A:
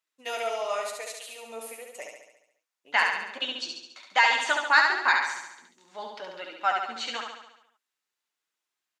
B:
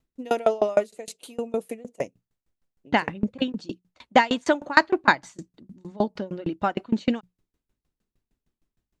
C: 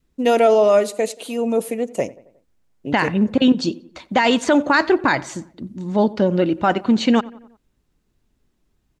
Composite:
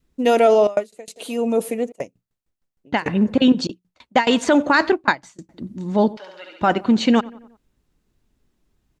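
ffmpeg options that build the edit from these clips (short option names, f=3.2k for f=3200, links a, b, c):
-filter_complex "[1:a]asplit=4[a][b][c][d];[2:a]asplit=6[e][f][g][h][i][j];[e]atrim=end=0.672[k];[a]atrim=start=0.668:end=1.162[l];[f]atrim=start=1.158:end=1.922[m];[b]atrim=start=1.918:end=3.062[n];[g]atrim=start=3.058:end=3.672[o];[c]atrim=start=3.668:end=4.272[p];[h]atrim=start=4.268:end=4.922[q];[d]atrim=start=4.918:end=5.492[r];[i]atrim=start=5.488:end=6.172[s];[0:a]atrim=start=6.168:end=6.612[t];[j]atrim=start=6.608[u];[k][l]acrossfade=d=0.004:c1=hsin:c2=hsin[v];[v][m]acrossfade=d=0.004:c1=hsin:c2=hsin[w];[w][n]acrossfade=d=0.004:c1=hsin:c2=hsin[x];[x][o]acrossfade=d=0.004:c1=hsin:c2=hsin[y];[y][p]acrossfade=d=0.004:c1=hsin:c2=hsin[z];[z][q]acrossfade=d=0.004:c1=hsin:c2=hsin[aa];[aa][r]acrossfade=d=0.004:c1=hsin:c2=hsin[ab];[ab][s]acrossfade=d=0.004:c1=hsin:c2=hsin[ac];[ac][t]acrossfade=d=0.004:c1=hsin:c2=hsin[ad];[ad][u]acrossfade=d=0.004:c1=hsin:c2=hsin"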